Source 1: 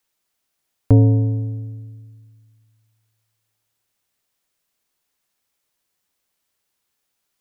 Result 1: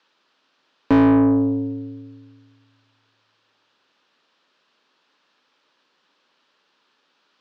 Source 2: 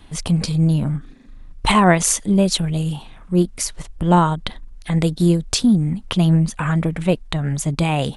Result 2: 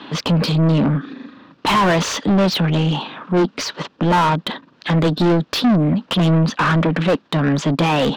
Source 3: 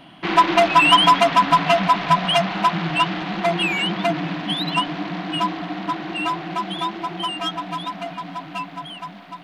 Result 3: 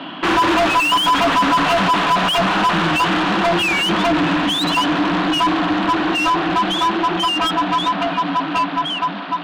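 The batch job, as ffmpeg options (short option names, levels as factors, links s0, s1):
-filter_complex "[0:a]highpass=f=140:w=0.5412,highpass=f=140:w=1.3066,equalizer=f=270:t=q:w=4:g=5,equalizer=f=720:t=q:w=4:g=-7,equalizer=f=2100:t=q:w=4:g=-8,lowpass=f=4700:w=0.5412,lowpass=f=4700:w=1.3066,asplit=2[s0][s1];[s1]highpass=f=720:p=1,volume=50.1,asoftclip=type=tanh:threshold=0.944[s2];[s0][s2]amix=inputs=2:normalize=0,lowpass=f=2000:p=1,volume=0.501,volume=0.473"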